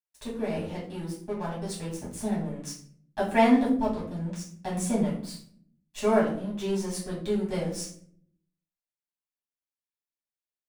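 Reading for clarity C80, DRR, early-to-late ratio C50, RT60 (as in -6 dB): 10.5 dB, -7.5 dB, 6.0 dB, 0.55 s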